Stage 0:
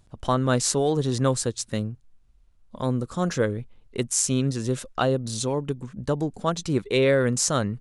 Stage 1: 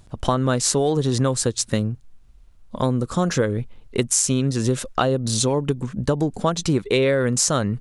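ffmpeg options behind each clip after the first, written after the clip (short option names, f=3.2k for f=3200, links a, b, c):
-af "acompressor=threshold=-25dB:ratio=6,volume=9dB"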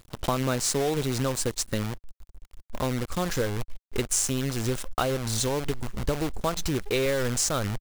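-af "acrusher=bits=5:dc=4:mix=0:aa=0.000001,asubboost=boost=7:cutoff=59,volume=-6dB"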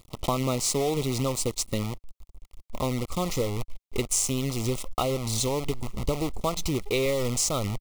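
-af "asuperstop=centerf=1600:order=8:qfactor=2.6"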